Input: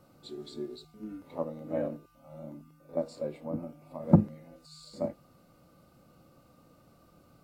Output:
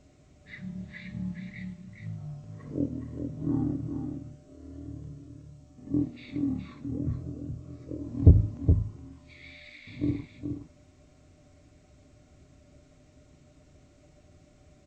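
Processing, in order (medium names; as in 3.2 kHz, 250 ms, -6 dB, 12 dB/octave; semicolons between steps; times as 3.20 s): delay 209 ms -6.5 dB; speed mistake 15 ips tape played at 7.5 ips; trim +2.5 dB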